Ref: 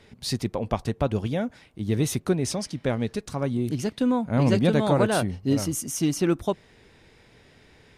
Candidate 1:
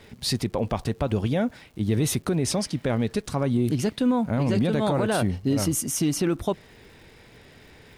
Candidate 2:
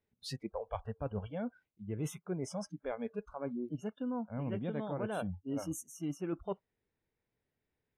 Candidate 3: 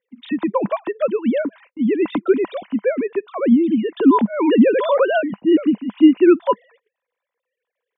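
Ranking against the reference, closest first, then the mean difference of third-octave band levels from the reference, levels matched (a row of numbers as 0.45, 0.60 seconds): 1, 2, 3; 3.0, 9.0, 14.5 decibels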